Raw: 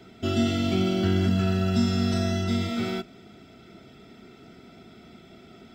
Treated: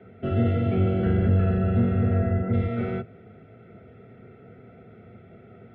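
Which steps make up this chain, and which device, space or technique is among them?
0:01.58–0:02.52: low-pass filter 4,400 Hz → 2,000 Hz 24 dB per octave
sub-octave bass pedal (sub-octave generator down 1 octave, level −1 dB; loudspeaker in its box 83–2,100 Hz, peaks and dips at 100 Hz +4 dB, 310 Hz −9 dB, 480 Hz +10 dB, 1,000 Hz −10 dB)

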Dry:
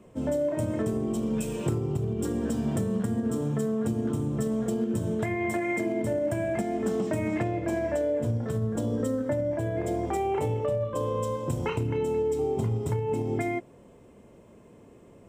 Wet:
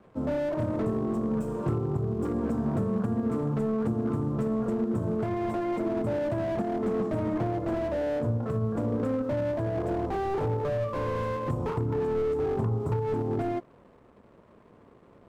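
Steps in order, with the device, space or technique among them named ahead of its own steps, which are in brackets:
high shelf with overshoot 1,800 Hz −13.5 dB, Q 3
early transistor amplifier (dead-zone distortion −57.5 dBFS; slew-rate limiting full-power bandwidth 24 Hz)

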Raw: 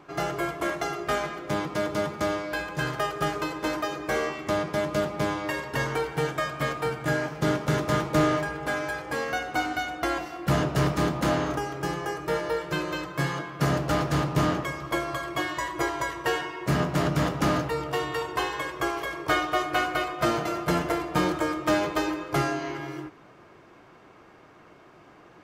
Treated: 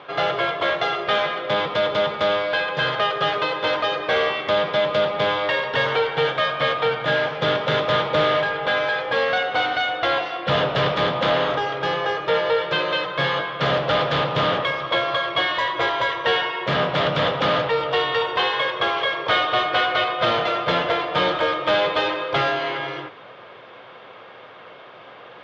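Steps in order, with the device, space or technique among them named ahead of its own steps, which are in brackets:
overdrive pedal into a guitar cabinet (mid-hump overdrive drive 17 dB, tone 7,100 Hz, clips at −13.5 dBFS; loudspeaker in its box 81–4,100 Hz, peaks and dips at 110 Hz +7 dB, 320 Hz −8 dB, 520 Hz +9 dB, 3,400 Hz +10 dB)

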